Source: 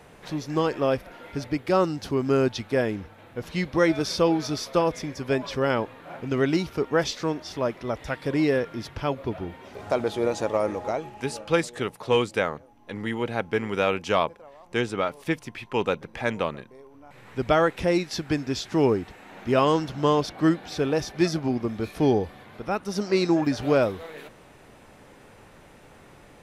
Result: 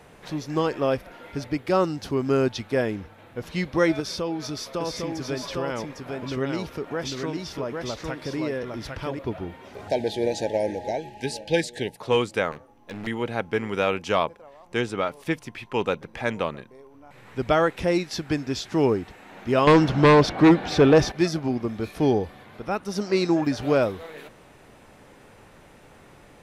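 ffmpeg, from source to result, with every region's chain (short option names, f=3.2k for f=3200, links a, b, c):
-filter_complex "[0:a]asettb=1/sr,asplit=3[a][b][c];[a]atrim=end=4.004[d];[b]atrim=start=4:end=9.19,asetpts=PTS-STARTPTS,afade=t=in:d=0.004:c=qsin,afade=t=out:st=5.186:d=0.004:c=qsin,bandreject=f=750:w=25,acompressor=threshold=-30dB:ratio=2:attack=3.2:release=140:knee=1:detection=peak,aecho=1:1:804:0.668,atrim=end_sample=228879[e];[c]atrim=start=9.186[f];[d][e]acrossfade=d=0.004:c1=hsin:c2=qsin[g];[g][f]acrossfade=d=0.004:c1=qsin:c2=hsin,asettb=1/sr,asplit=3[h][i][j];[h]atrim=end=9.884[k];[i]atrim=start=9.88:end=11.97,asetpts=PTS-STARTPTS,afade=t=in:d=0.004:c=qsin,afade=t=out:st=2.086:d=0.004:c=qsin,asuperstop=centerf=1200:order=20:qfactor=1.9,equalizer=f=4.2k:w=2.3:g=6[l];[j]atrim=start=11.966[m];[k][l]acrossfade=d=0.004:c1=hsin:c2=qsin[n];[n][m]acrossfade=d=0.004:c1=qsin:c2=hsin,asettb=1/sr,asplit=3[o][p][q];[o]atrim=end=12.514[r];[p]atrim=start=12.51:end=13.07,asetpts=PTS-STARTPTS,afade=t=in:d=0.004:c=qsin,afade=t=out:st=0.556:d=0.004:c=qsin,bandreject=f=127.4:t=h:w=4,bandreject=f=254.8:t=h:w=4,bandreject=f=382.2:t=h:w=4,bandreject=f=509.6:t=h:w=4,bandreject=f=637:t=h:w=4,bandreject=f=764.4:t=h:w=4,bandreject=f=891.8:t=h:w=4,bandreject=f=1.0192k:t=h:w=4,bandreject=f=1.1466k:t=h:w=4,bandreject=f=1.274k:t=h:w=4,bandreject=f=1.4014k:t=h:w=4,bandreject=f=1.5288k:t=h:w=4,bandreject=f=1.6562k:t=h:w=4,bandreject=f=1.7836k:t=h:w=4,bandreject=f=1.911k:t=h:w=4,bandreject=f=2.0384k:t=h:w=4,bandreject=f=2.1658k:t=h:w=4,bandreject=f=2.2932k:t=h:w=4,bandreject=f=2.4206k:t=h:w=4,bandreject=f=2.548k:t=h:w=4,bandreject=f=2.6754k:t=h:w=4,bandreject=f=2.8028k:t=h:w=4,bandreject=f=2.9302k:t=h:w=4,bandreject=f=3.0576k:t=h:w=4,bandreject=f=3.185k:t=h:w=4,bandreject=f=3.3124k:t=h:w=4,bandreject=f=3.4398k:t=h:w=4,bandreject=f=3.5672k:t=h:w=4,bandreject=f=3.6946k:t=h:w=4,bandreject=f=3.822k:t=h:w=4,aeval=exprs='0.0398*(abs(mod(val(0)/0.0398+3,4)-2)-1)':c=same[s];[q]atrim=start=13.066[t];[r][s]acrossfade=d=0.004:c1=hsin:c2=qsin[u];[u][t]acrossfade=d=0.004:c1=qsin:c2=hsin,asettb=1/sr,asplit=3[v][w][x];[v]atrim=end=19.674[y];[w]atrim=start=19.67:end=21.12,asetpts=PTS-STARTPTS,afade=t=in:d=0.004:c=qsin,afade=t=out:st=1.446:d=0.004:c=qsin,aemphasis=mode=reproduction:type=50kf,aeval=exprs='0.335*sin(PI/2*2.24*val(0)/0.335)':c=same[z];[x]atrim=start=21.116[aa];[y][z]acrossfade=d=0.004:c1=hsin:c2=qsin[ab];[ab][aa]acrossfade=d=0.004:c1=qsin:c2=hsin"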